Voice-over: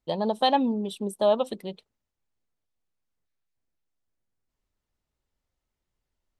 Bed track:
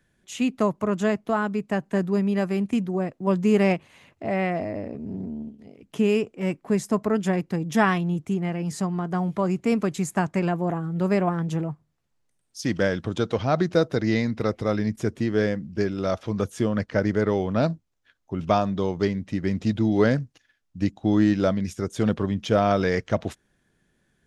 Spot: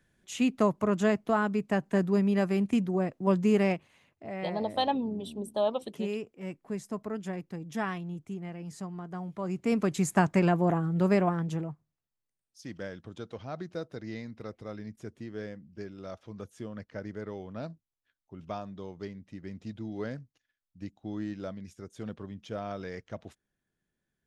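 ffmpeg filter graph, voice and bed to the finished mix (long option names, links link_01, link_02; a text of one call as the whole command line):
ffmpeg -i stem1.wav -i stem2.wav -filter_complex "[0:a]adelay=4350,volume=-6dB[link_01];[1:a]volume=10dB,afade=type=out:start_time=3.27:duration=0.8:silence=0.316228,afade=type=in:start_time=9.37:duration=0.78:silence=0.237137,afade=type=out:start_time=10.79:duration=1.3:silence=0.149624[link_02];[link_01][link_02]amix=inputs=2:normalize=0" out.wav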